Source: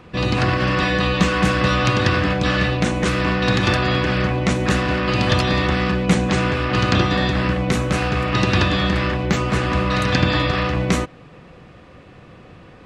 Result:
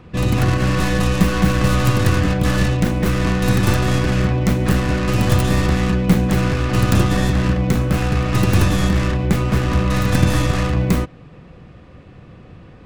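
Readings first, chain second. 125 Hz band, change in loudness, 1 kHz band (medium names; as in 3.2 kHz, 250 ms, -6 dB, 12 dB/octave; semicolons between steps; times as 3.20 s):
+4.0 dB, +1.0 dB, -3.0 dB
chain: tracing distortion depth 0.41 ms; bass shelf 260 Hz +9.5 dB; trim -3.5 dB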